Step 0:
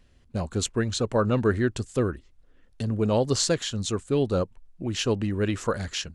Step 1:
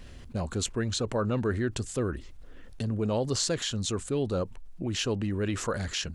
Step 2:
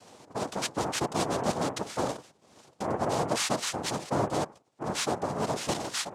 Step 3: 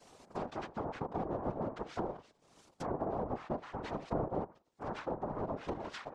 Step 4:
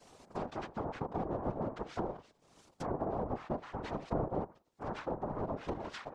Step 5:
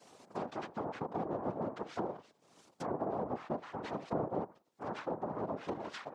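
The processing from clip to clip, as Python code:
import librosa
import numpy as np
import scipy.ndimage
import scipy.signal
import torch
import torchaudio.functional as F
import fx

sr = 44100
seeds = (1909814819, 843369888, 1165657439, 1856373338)

y1 = fx.env_flatten(x, sr, amount_pct=50)
y1 = y1 * librosa.db_to_amplitude(-7.0)
y2 = fx.hum_notches(y1, sr, base_hz=50, count=5)
y2 = fx.noise_vocoder(y2, sr, seeds[0], bands=2)
y3 = fx.env_lowpass_down(y2, sr, base_hz=860.0, full_db=-26.0)
y3 = fx.whisperise(y3, sr, seeds[1])
y3 = y3 * librosa.db_to_amplitude(-6.5)
y4 = fx.low_shelf(y3, sr, hz=130.0, db=3.5)
y5 = scipy.signal.sosfilt(scipy.signal.butter(2, 150.0, 'highpass', fs=sr, output='sos'), y4)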